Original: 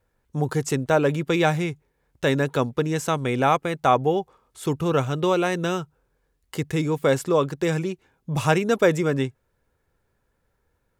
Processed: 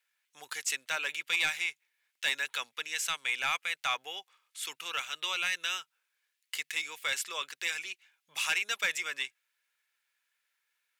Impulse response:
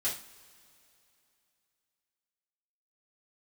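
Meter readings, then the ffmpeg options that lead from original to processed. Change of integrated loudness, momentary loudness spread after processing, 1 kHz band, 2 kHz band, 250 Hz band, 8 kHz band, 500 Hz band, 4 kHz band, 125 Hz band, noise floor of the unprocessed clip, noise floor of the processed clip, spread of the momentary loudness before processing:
−9.0 dB, 11 LU, −14.5 dB, −1.0 dB, −36.0 dB, 0.0 dB, −27.5 dB, +2.0 dB, below −40 dB, −72 dBFS, −83 dBFS, 11 LU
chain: -af "highpass=frequency=2400:width_type=q:width=1.7,asoftclip=type=tanh:threshold=-19.5dB"

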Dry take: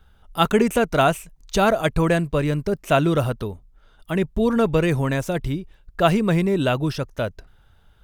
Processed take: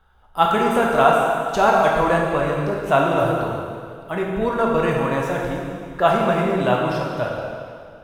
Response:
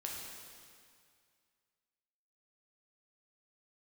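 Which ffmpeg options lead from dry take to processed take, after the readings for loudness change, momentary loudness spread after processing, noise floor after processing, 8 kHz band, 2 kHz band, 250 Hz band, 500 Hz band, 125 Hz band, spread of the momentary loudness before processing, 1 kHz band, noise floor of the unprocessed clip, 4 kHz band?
+1.5 dB, 13 LU, −44 dBFS, can't be measured, +3.0 dB, −2.5 dB, +2.5 dB, −4.0 dB, 11 LU, +6.5 dB, −55 dBFS, −2.0 dB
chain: -filter_complex "[0:a]equalizer=frequency=930:width_type=o:width=1.9:gain=12[link_01];[1:a]atrim=start_sample=2205[link_02];[link_01][link_02]afir=irnorm=-1:irlink=0,volume=-4dB"

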